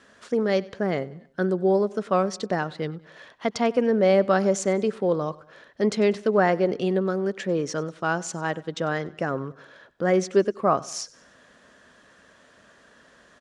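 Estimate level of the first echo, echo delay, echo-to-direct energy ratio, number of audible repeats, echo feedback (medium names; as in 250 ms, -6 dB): -21.5 dB, 97 ms, -20.5 dB, 3, 46%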